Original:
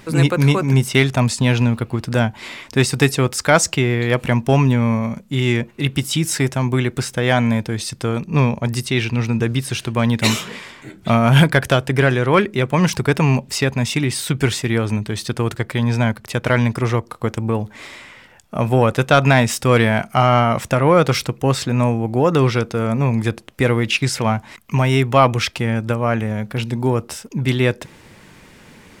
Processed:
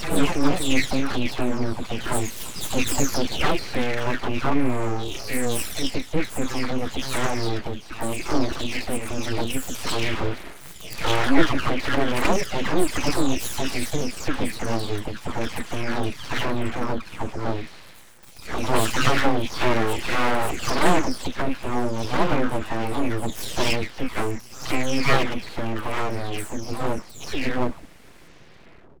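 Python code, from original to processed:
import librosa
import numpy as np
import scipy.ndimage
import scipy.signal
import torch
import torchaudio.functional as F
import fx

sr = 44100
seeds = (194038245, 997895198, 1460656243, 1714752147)

y = fx.spec_delay(x, sr, highs='early', ms=718)
y = fx.low_shelf(y, sr, hz=220.0, db=5.5)
y = np.abs(y)
y = y * 10.0 ** (-2.5 / 20.0)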